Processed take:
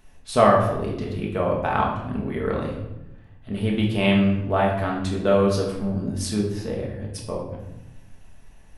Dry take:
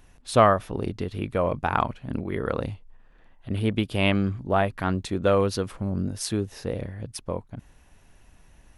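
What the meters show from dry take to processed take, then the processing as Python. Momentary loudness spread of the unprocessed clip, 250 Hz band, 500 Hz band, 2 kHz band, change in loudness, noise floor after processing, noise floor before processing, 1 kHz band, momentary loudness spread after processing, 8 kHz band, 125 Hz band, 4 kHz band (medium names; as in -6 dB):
13 LU, +4.5 dB, +3.0 dB, +1.5 dB, +3.0 dB, -48 dBFS, -56 dBFS, +2.0 dB, 14 LU, +0.5 dB, +2.0 dB, +1.5 dB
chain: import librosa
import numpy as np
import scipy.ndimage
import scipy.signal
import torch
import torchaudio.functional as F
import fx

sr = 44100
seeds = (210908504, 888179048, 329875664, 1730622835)

y = fx.room_shoebox(x, sr, seeds[0], volume_m3=330.0, walls='mixed', distance_m=1.5)
y = F.gain(torch.from_numpy(y), -2.5).numpy()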